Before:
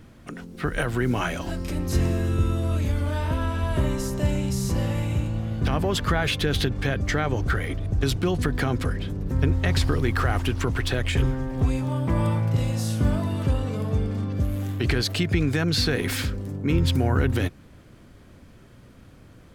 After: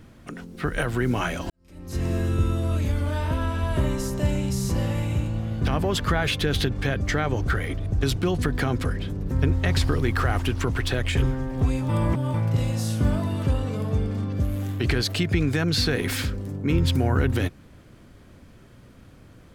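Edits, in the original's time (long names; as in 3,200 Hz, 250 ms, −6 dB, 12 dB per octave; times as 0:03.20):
0:01.50–0:02.16: fade in quadratic
0:11.89–0:12.34: reverse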